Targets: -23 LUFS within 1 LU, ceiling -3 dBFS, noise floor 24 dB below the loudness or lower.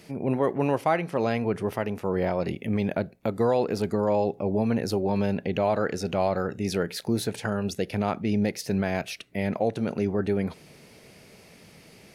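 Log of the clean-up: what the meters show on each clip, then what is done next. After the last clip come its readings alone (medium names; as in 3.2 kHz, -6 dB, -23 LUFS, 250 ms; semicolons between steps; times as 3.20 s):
loudness -27.0 LUFS; peak level -11.5 dBFS; loudness target -23.0 LUFS
-> trim +4 dB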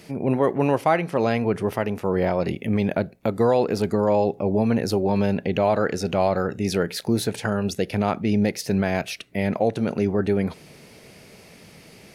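loudness -23.0 LUFS; peak level -7.5 dBFS; noise floor -48 dBFS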